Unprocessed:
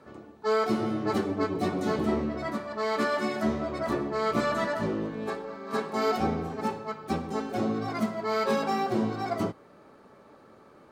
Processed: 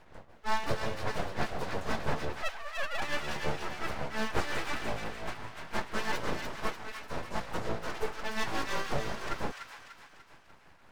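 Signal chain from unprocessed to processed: 2.42–3.02 sine-wave speech; full-wave rectifier; tremolo 5.7 Hz, depth 68%; thin delay 0.295 s, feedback 48%, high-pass 1500 Hz, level -4 dB

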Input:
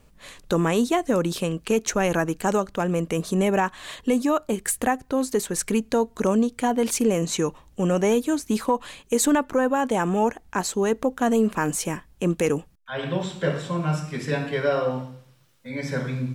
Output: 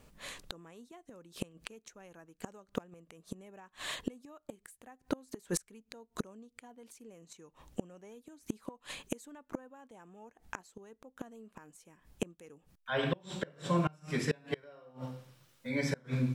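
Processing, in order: low shelf 91 Hz -6 dB; flipped gate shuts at -18 dBFS, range -30 dB; gain -1.5 dB

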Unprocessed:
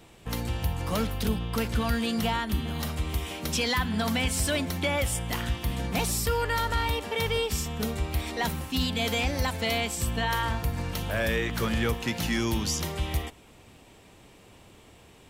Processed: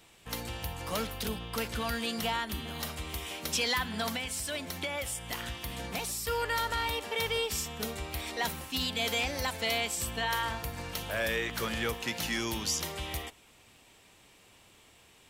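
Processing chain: tilt shelf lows -5.5 dB, about 940 Hz; 4.08–6.28 compressor, threshold -27 dBFS, peak gain reduction 6 dB; dynamic EQ 500 Hz, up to +5 dB, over -44 dBFS, Q 0.72; gain -6 dB

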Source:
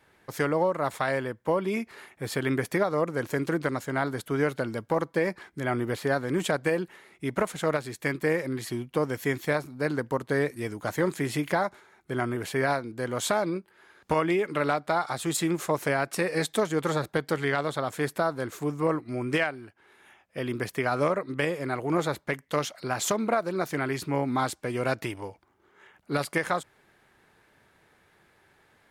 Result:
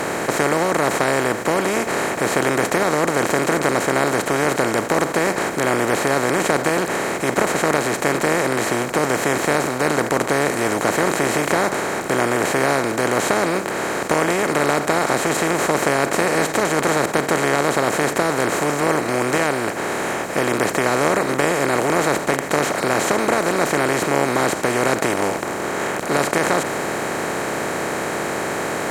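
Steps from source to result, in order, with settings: per-bin compression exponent 0.2; notch 3500 Hz, Q 8.1; gain -1.5 dB

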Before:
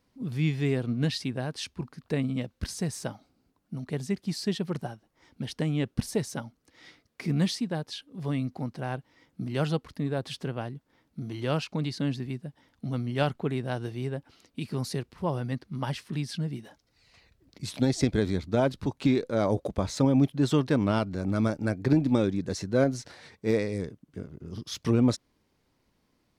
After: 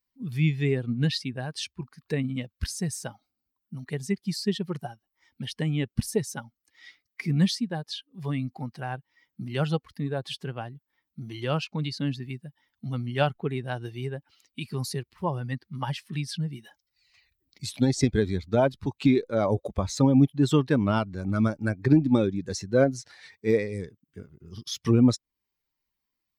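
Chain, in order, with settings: per-bin expansion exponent 1.5; mismatched tape noise reduction encoder only; gain +5 dB

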